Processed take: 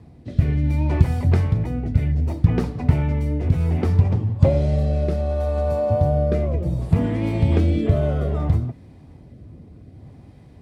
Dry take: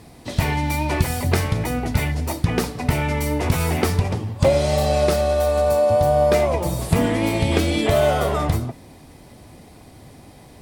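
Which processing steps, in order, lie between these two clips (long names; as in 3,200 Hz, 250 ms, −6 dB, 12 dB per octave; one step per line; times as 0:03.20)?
rotating-speaker cabinet horn 0.65 Hz
high-pass filter 76 Hz
RIAA equalisation playback
level −6 dB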